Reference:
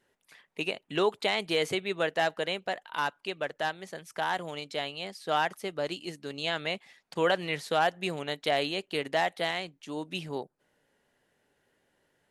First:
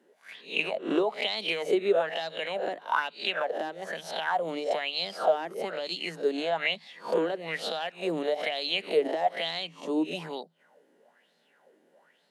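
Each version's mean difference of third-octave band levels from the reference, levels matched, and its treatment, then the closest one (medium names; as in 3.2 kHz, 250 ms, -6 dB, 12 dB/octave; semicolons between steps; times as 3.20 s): 7.5 dB: reverse spectral sustain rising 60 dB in 0.38 s; rippled Chebyshev high-pass 160 Hz, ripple 6 dB; compression 6:1, threshold -36 dBFS, peak gain reduction 13.5 dB; sweeping bell 1.1 Hz 310–4300 Hz +17 dB; trim +3.5 dB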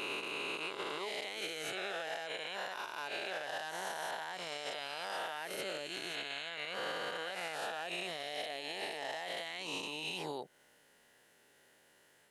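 11.0 dB: reverse spectral sustain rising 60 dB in 2.86 s; tilt EQ +2 dB/octave; compression 5:1, threshold -35 dBFS, peak gain reduction 16 dB; peak limiter -31.5 dBFS, peak gain reduction 10.5 dB; trim +1.5 dB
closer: first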